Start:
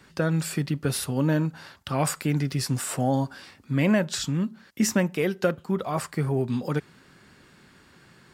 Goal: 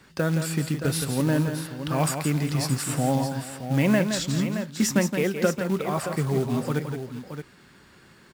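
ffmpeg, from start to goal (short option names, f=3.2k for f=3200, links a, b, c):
-af "acrusher=bits=5:mode=log:mix=0:aa=0.000001,aecho=1:1:169|397|622:0.422|0.119|0.335"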